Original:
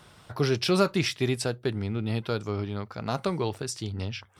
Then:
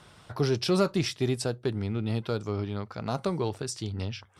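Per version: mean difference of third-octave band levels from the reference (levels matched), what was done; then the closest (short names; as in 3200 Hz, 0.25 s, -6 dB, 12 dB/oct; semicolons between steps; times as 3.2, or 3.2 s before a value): 1.0 dB: LPF 11000 Hz 12 dB/oct; dynamic EQ 2200 Hz, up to -6 dB, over -43 dBFS, Q 0.93; in parallel at -7 dB: hard clip -20 dBFS, distortion -16 dB; on the sum: gain -3.5 dB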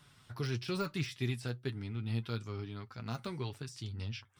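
3.0 dB: de-esser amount 85%; bell 590 Hz -10.5 dB 1.5 oct; flange 1.1 Hz, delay 6.7 ms, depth 2.3 ms, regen +37%; gain -3 dB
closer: first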